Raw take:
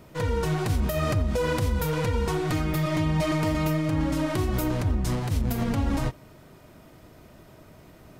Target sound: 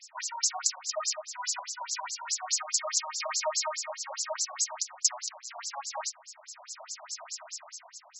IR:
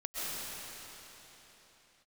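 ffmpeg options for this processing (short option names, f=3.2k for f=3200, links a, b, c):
-filter_complex "[0:a]aexciter=amount=10.4:drive=8.3:freq=5.3k,dynaudnorm=f=120:g=13:m=12dB,asplit=2[a][b];[1:a]atrim=start_sample=2205,asetrate=48510,aresample=44100,adelay=7[c];[b][c]afir=irnorm=-1:irlink=0,volume=-27dB[d];[a][d]amix=inputs=2:normalize=0,afftfilt=real='re*between(b*sr/1024,780*pow(5700/780,0.5+0.5*sin(2*PI*4.8*pts/sr))/1.41,780*pow(5700/780,0.5+0.5*sin(2*PI*4.8*pts/sr))*1.41)':imag='im*between(b*sr/1024,780*pow(5700/780,0.5+0.5*sin(2*PI*4.8*pts/sr))/1.41,780*pow(5700/780,0.5+0.5*sin(2*PI*4.8*pts/sr))*1.41)':win_size=1024:overlap=0.75,volume=4dB"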